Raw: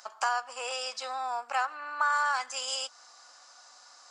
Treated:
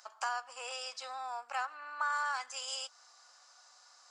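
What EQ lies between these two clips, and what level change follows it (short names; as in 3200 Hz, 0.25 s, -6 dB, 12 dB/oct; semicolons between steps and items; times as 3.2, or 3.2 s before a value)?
HPF 500 Hz 6 dB/oct; -6.0 dB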